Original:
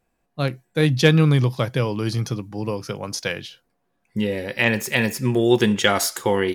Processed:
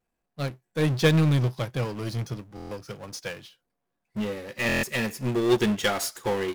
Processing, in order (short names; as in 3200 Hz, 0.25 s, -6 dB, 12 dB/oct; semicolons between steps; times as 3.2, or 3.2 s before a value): power-law curve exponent 0.5; stuck buffer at 2.55/4.67, samples 1024, times 6; upward expander 2.5:1, over -31 dBFS; gain -8 dB